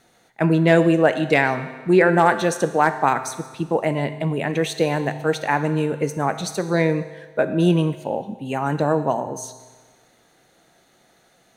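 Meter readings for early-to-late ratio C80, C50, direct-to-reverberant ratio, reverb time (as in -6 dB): 13.0 dB, 11.5 dB, 9.5 dB, 1.4 s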